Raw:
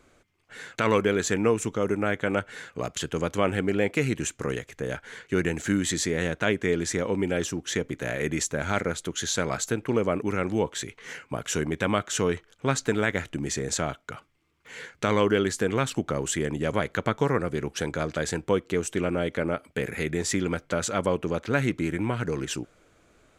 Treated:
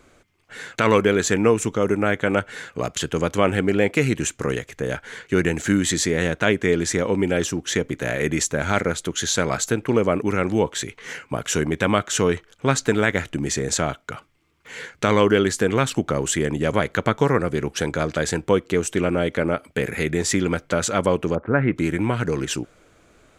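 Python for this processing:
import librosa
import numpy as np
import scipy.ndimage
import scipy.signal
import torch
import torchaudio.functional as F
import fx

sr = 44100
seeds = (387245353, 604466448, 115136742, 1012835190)

y = fx.lowpass(x, sr, hz=fx.line((21.34, 1100.0), (21.75, 2600.0)), slope=24, at=(21.34, 21.75), fade=0.02)
y = F.gain(torch.from_numpy(y), 5.5).numpy()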